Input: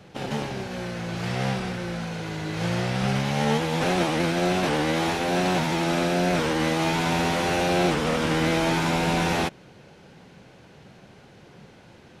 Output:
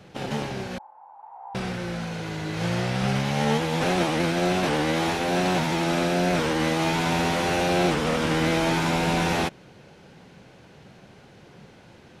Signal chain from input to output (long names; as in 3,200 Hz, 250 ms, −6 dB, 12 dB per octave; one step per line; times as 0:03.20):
0:00.78–0:01.55: flat-topped band-pass 880 Hz, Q 5.2